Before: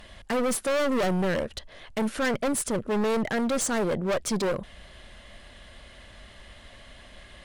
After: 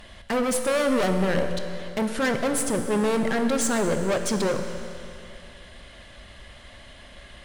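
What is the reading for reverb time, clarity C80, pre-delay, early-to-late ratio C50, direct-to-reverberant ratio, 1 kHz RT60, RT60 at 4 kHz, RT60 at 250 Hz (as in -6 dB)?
2.6 s, 7.5 dB, 18 ms, 7.0 dB, 6.0 dB, 2.6 s, 2.5 s, 2.6 s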